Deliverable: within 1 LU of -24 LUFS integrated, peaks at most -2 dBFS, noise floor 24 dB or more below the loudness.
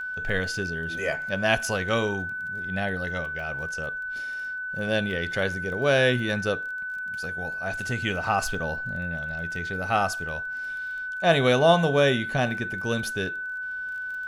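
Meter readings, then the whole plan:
ticks 19/s; steady tone 1500 Hz; tone level -30 dBFS; loudness -26.5 LUFS; peak -6.5 dBFS; loudness target -24.0 LUFS
-> de-click; notch 1500 Hz, Q 30; gain +2.5 dB

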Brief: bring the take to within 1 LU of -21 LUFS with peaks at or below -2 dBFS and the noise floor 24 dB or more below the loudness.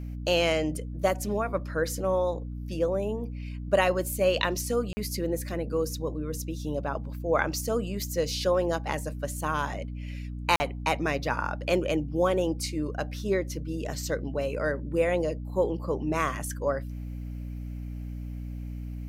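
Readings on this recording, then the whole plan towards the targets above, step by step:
dropouts 2; longest dropout 40 ms; hum 60 Hz; harmonics up to 300 Hz; hum level -33 dBFS; loudness -29.5 LUFS; peak -6.5 dBFS; loudness target -21.0 LUFS
-> interpolate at 4.93/10.56, 40 ms; de-hum 60 Hz, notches 5; gain +8.5 dB; limiter -2 dBFS

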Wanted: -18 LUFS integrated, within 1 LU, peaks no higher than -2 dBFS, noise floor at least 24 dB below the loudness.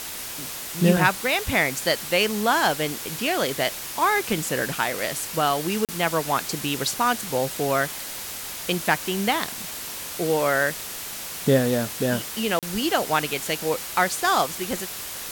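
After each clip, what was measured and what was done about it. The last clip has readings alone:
dropouts 2; longest dropout 37 ms; noise floor -34 dBFS; noise floor target -48 dBFS; loudness -24.0 LUFS; peak -5.0 dBFS; loudness target -18.0 LUFS
-> interpolate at 5.85/12.59, 37 ms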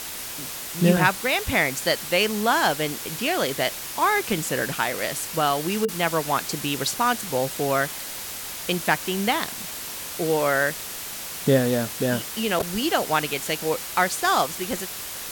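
dropouts 0; noise floor -34 dBFS; noise floor target -48 dBFS
-> noise print and reduce 14 dB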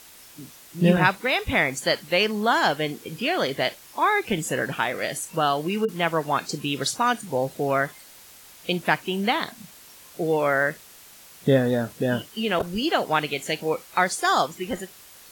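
noise floor -48 dBFS; loudness -24.0 LUFS; peak -5.0 dBFS; loudness target -18.0 LUFS
-> gain +6 dB; limiter -2 dBFS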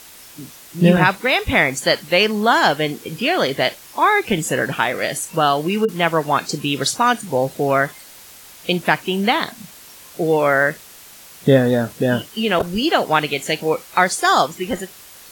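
loudness -18.0 LUFS; peak -2.0 dBFS; noise floor -42 dBFS

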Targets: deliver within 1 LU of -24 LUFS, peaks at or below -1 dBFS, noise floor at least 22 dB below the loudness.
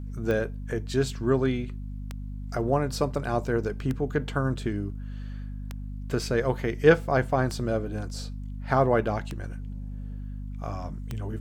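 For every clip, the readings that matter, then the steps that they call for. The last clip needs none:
clicks 7; hum 50 Hz; harmonics up to 250 Hz; hum level -33 dBFS; loudness -27.5 LUFS; peak -5.0 dBFS; loudness target -24.0 LUFS
-> de-click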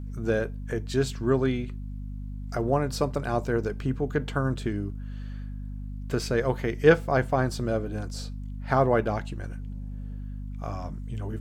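clicks 0; hum 50 Hz; harmonics up to 250 Hz; hum level -33 dBFS
-> de-hum 50 Hz, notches 5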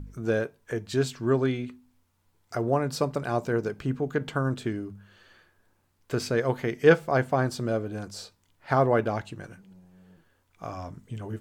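hum none; loudness -27.5 LUFS; peak -5.0 dBFS; loudness target -24.0 LUFS
-> gain +3.5 dB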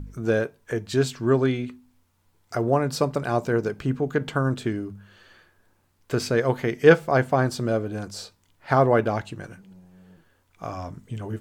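loudness -24.0 LUFS; peak -1.5 dBFS; noise floor -66 dBFS

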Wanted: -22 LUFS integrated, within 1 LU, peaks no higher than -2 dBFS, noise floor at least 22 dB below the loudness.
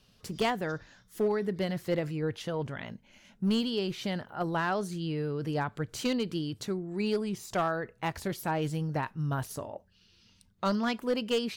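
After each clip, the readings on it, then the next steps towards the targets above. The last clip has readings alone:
clipped 0.6%; flat tops at -21.5 dBFS; loudness -32.0 LUFS; peak -21.5 dBFS; loudness target -22.0 LUFS
-> clip repair -21.5 dBFS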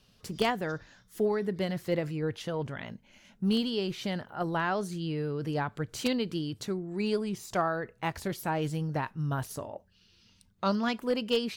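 clipped 0.0%; loudness -32.0 LUFS; peak -12.5 dBFS; loudness target -22.0 LUFS
-> gain +10 dB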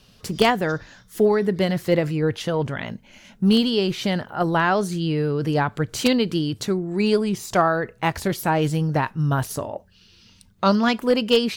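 loudness -22.0 LUFS; peak -2.5 dBFS; noise floor -54 dBFS

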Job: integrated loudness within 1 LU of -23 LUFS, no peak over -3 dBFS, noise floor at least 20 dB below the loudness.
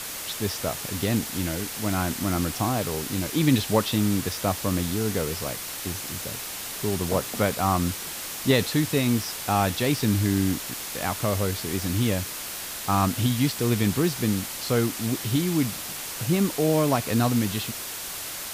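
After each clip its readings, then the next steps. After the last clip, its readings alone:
noise floor -35 dBFS; noise floor target -46 dBFS; loudness -25.5 LUFS; peak -7.5 dBFS; loudness target -23.0 LUFS
-> noise print and reduce 11 dB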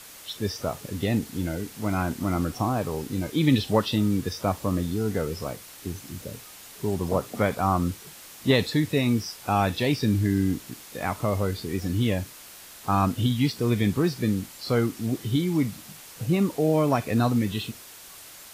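noise floor -46 dBFS; loudness -26.0 LUFS; peak -8.5 dBFS; loudness target -23.0 LUFS
-> gain +3 dB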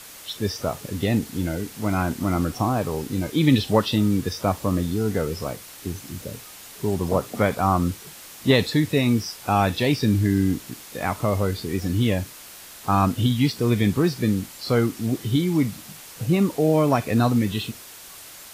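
loudness -23.0 LUFS; peak -5.5 dBFS; noise floor -43 dBFS

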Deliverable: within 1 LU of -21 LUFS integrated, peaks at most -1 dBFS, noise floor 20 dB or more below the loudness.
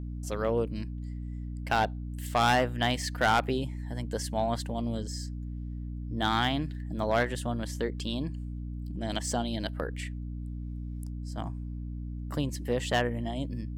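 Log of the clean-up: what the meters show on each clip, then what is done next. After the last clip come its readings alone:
clipped 0.4%; flat tops at -18.0 dBFS; hum 60 Hz; harmonics up to 300 Hz; hum level -34 dBFS; loudness -31.5 LUFS; peak -18.0 dBFS; loudness target -21.0 LUFS
-> clip repair -18 dBFS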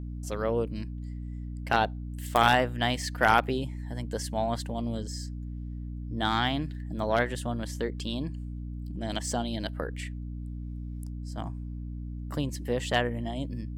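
clipped 0.0%; hum 60 Hz; harmonics up to 300 Hz; hum level -34 dBFS
-> de-hum 60 Hz, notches 5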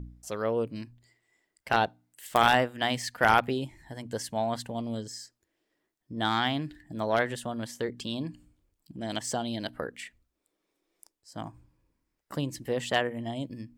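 hum none; loudness -30.0 LUFS; peak -8.5 dBFS; loudness target -21.0 LUFS
-> gain +9 dB; limiter -1 dBFS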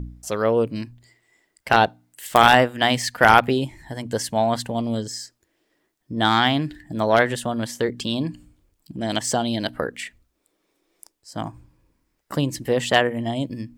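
loudness -21.0 LUFS; peak -1.0 dBFS; noise floor -73 dBFS

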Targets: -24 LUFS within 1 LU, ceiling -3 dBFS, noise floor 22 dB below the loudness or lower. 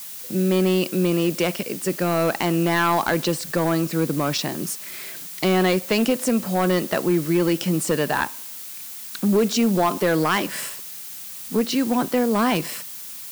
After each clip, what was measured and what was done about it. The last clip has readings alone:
clipped 1.4%; flat tops at -13.0 dBFS; noise floor -36 dBFS; noise floor target -44 dBFS; loudness -22.0 LUFS; peak -13.0 dBFS; loudness target -24.0 LUFS
-> clip repair -13 dBFS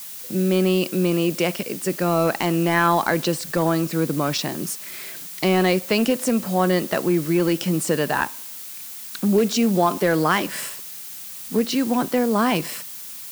clipped 0.0%; noise floor -36 dBFS; noise floor target -44 dBFS
-> denoiser 8 dB, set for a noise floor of -36 dBFS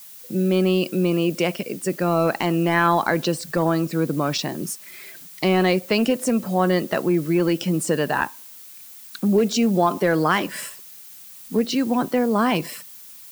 noise floor -43 dBFS; noise floor target -44 dBFS
-> denoiser 6 dB, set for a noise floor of -43 dBFS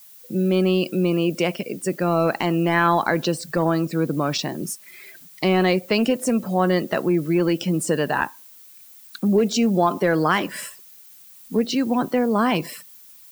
noise floor -47 dBFS; loudness -21.5 LUFS; peak -5.0 dBFS; loudness target -24.0 LUFS
-> gain -2.5 dB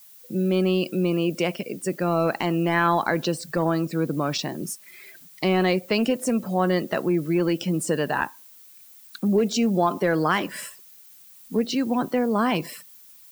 loudness -24.0 LUFS; peak -7.5 dBFS; noise floor -49 dBFS

